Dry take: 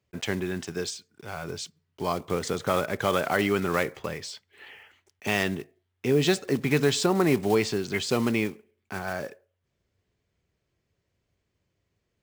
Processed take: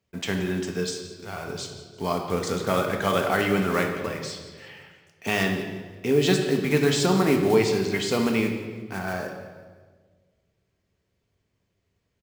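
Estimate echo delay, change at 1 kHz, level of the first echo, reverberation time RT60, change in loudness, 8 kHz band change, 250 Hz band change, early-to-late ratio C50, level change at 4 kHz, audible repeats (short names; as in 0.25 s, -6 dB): 0.173 s, +2.0 dB, -16.0 dB, 1.5 s, +2.0 dB, +1.5 dB, +3.0 dB, 5.5 dB, +2.0 dB, 3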